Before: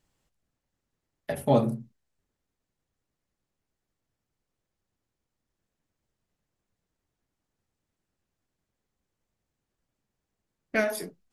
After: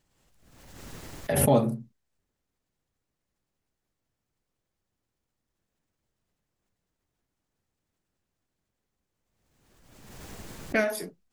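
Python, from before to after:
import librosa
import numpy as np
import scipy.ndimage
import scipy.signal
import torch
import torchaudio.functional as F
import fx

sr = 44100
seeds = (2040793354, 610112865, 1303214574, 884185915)

y = fx.pre_swell(x, sr, db_per_s=38.0)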